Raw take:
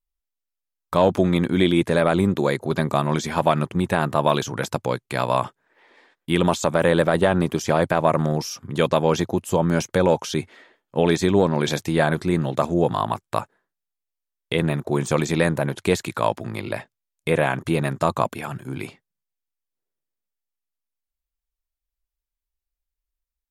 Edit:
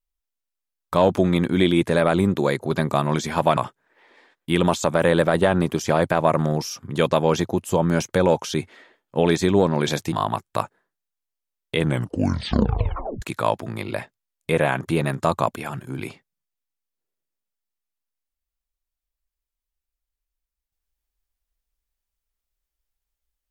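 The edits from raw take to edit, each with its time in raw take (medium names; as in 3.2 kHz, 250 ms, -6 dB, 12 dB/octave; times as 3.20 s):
3.57–5.37 s: delete
11.92–12.90 s: delete
14.56 s: tape stop 1.44 s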